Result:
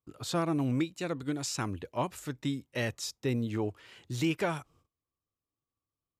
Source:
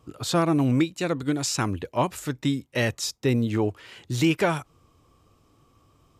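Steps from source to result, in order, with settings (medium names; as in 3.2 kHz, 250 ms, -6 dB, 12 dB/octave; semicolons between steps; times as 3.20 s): gate -54 dBFS, range -26 dB; trim -8 dB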